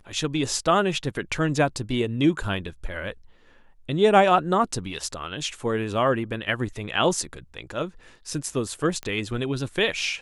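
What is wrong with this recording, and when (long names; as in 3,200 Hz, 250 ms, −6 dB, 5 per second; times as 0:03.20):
0:09.03: click −18 dBFS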